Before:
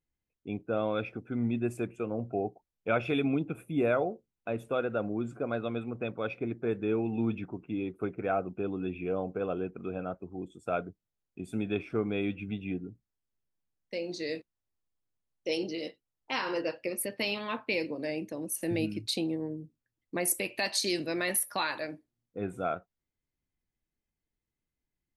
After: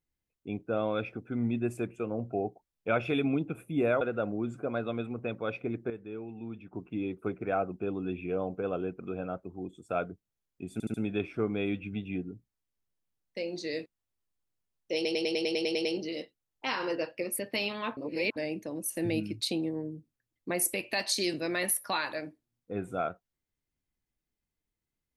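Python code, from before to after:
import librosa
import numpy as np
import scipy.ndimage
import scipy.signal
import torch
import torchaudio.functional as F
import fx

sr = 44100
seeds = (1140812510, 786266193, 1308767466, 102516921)

y = fx.edit(x, sr, fx.cut(start_s=4.01, length_s=0.77),
    fx.clip_gain(start_s=6.67, length_s=0.83, db=-11.0),
    fx.stutter(start_s=11.5, slice_s=0.07, count=4),
    fx.stutter(start_s=15.51, slice_s=0.1, count=10),
    fx.reverse_span(start_s=17.63, length_s=0.39), tone=tone)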